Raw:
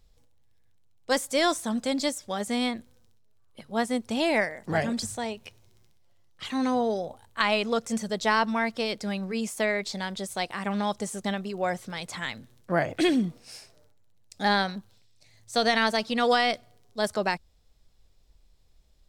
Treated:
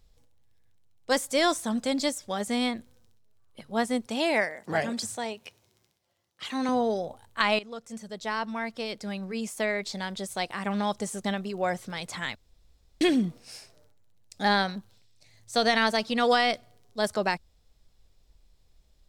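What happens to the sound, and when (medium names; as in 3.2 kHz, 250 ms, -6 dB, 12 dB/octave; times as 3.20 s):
4.06–6.69 s: high-pass 260 Hz 6 dB/octave
7.59–11.38 s: fade in equal-power, from -15.5 dB
12.35–13.01 s: room tone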